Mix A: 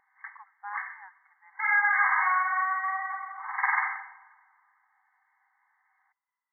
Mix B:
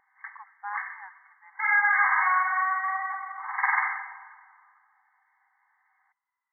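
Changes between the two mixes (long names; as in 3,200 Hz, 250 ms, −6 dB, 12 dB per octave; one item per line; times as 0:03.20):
speech +3.5 dB
background: send +8.5 dB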